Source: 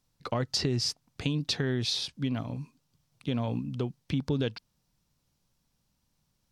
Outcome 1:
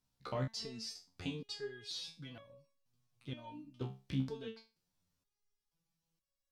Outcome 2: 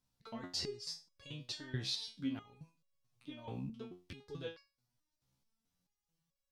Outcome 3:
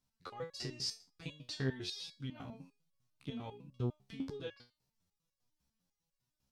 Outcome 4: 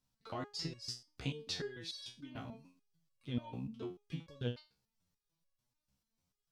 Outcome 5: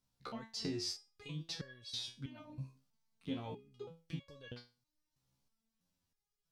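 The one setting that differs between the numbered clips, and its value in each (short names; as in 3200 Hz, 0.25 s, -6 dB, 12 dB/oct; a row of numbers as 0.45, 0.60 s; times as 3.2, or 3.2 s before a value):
stepped resonator, rate: 2.1, 4.6, 10, 6.8, 3.1 Hz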